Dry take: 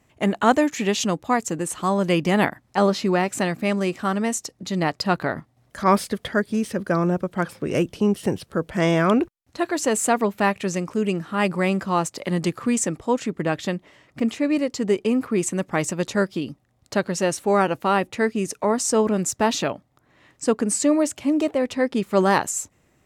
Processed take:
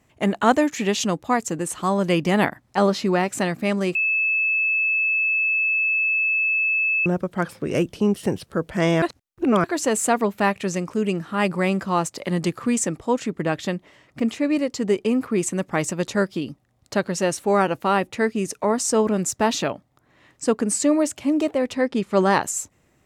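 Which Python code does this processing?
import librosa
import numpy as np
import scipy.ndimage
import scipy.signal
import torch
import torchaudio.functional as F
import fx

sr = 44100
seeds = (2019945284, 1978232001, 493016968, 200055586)

y = fx.bessel_lowpass(x, sr, hz=8500.0, order=4, at=(21.81, 22.43))
y = fx.edit(y, sr, fx.bleep(start_s=3.95, length_s=3.11, hz=2610.0, db=-18.0),
    fx.reverse_span(start_s=9.02, length_s=0.62), tone=tone)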